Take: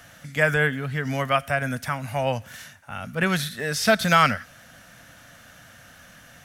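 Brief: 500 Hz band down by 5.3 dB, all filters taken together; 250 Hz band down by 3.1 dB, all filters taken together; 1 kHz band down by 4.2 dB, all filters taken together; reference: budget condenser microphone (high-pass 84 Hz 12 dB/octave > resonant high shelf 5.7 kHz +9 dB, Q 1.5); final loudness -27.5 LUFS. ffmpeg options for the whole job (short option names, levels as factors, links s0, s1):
-af "highpass=84,equalizer=f=250:t=o:g=-3.5,equalizer=f=500:t=o:g=-4.5,equalizer=f=1000:t=o:g=-4.5,highshelf=f=5700:t=q:w=1.5:g=9,volume=0.75"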